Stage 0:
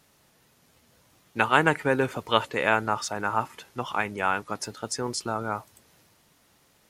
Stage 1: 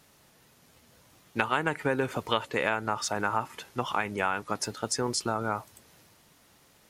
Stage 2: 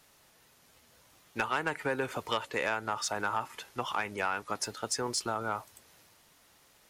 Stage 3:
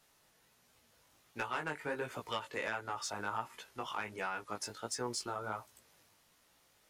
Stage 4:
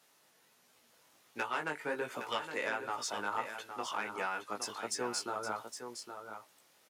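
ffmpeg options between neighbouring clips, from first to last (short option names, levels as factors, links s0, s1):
-af "acompressor=threshold=0.0562:ratio=6,volume=1.26"
-filter_complex "[0:a]equalizer=f=160:t=o:w=2.7:g=-7,acrossover=split=440[s0][s1];[s1]asoftclip=type=tanh:threshold=0.112[s2];[s0][s2]amix=inputs=2:normalize=0,volume=0.891"
-af "flanger=delay=16:depth=4.2:speed=1.4,volume=0.668"
-af "highpass=200,aecho=1:1:814:0.376,volume=1.26"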